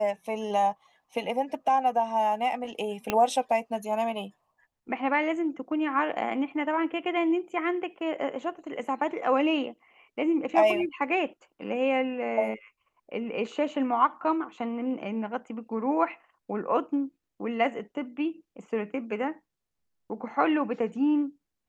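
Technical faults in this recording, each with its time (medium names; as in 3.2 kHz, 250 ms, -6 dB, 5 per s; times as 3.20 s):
3.10 s: pop -11 dBFS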